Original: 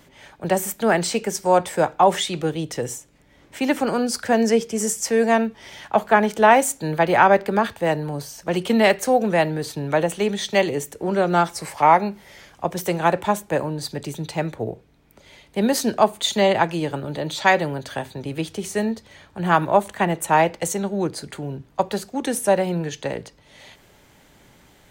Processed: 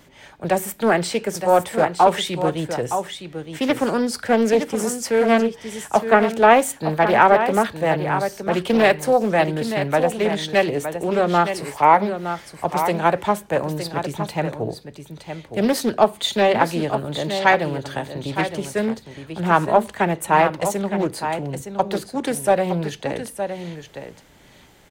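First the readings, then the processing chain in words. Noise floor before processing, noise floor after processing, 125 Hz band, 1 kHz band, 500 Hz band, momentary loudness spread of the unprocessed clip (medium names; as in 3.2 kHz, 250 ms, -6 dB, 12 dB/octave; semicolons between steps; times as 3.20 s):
-54 dBFS, -49 dBFS, +1.0 dB, +1.5 dB, +1.5 dB, 13 LU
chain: dynamic bell 6.5 kHz, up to -6 dB, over -44 dBFS, Q 1.7; delay 915 ms -9 dB; loudspeaker Doppler distortion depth 0.35 ms; trim +1 dB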